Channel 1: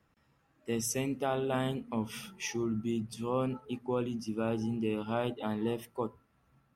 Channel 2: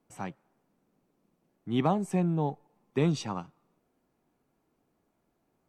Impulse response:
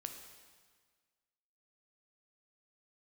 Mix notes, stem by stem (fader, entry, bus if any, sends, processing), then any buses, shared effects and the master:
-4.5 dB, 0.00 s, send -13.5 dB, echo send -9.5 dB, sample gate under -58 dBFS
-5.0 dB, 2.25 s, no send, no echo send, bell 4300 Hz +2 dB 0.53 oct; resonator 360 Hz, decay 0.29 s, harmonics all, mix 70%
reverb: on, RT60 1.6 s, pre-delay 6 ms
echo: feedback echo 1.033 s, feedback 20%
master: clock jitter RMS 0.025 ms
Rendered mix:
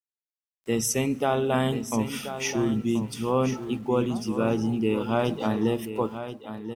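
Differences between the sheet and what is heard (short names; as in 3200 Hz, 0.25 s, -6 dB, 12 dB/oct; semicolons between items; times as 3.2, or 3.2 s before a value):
stem 1 -4.5 dB -> +6.5 dB; master: missing clock jitter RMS 0.025 ms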